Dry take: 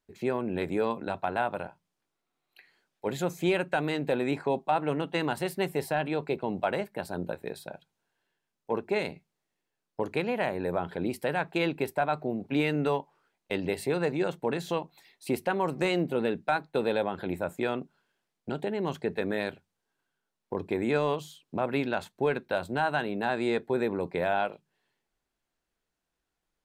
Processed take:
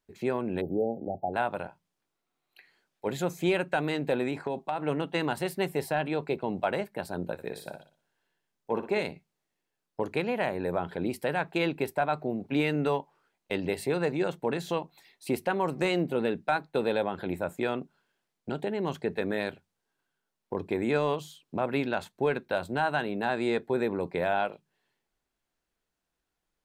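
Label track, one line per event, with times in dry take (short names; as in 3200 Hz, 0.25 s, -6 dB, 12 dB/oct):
0.610000	1.340000	spectral delete 850–12000 Hz
4.270000	4.840000	compressor, threshold -26 dBFS
7.330000	9.010000	flutter echo walls apart 10.1 m, dies away in 0.39 s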